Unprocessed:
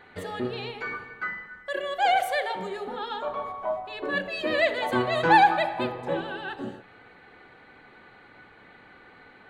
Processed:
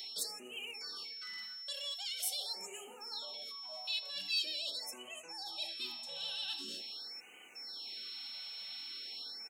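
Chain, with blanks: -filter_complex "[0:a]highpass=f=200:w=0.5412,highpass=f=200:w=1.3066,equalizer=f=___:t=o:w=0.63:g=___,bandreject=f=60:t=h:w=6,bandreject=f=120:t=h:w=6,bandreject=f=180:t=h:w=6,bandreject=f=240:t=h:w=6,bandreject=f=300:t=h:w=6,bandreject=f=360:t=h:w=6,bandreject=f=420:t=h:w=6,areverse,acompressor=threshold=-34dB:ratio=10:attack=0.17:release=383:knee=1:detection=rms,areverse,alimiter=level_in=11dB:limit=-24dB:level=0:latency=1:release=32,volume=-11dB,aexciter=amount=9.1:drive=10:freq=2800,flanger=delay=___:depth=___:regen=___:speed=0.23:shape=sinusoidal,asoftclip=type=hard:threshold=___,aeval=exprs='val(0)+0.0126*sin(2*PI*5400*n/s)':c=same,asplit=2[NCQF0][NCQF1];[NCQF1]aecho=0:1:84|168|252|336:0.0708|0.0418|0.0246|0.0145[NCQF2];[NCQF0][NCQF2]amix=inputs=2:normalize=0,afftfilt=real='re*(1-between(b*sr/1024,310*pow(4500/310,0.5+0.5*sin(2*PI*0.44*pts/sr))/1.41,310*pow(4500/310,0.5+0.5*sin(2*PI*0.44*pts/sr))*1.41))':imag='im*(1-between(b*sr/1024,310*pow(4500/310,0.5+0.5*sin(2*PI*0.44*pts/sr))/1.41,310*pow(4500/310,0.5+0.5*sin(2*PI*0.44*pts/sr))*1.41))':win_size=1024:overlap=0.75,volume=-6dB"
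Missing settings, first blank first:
4600, 4, 6.8, 7.4, -73, -20dB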